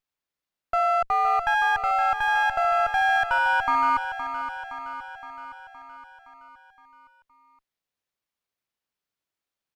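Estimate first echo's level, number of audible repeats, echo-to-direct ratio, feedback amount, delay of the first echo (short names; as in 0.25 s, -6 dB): -10.0 dB, 6, -8.0 dB, 59%, 0.517 s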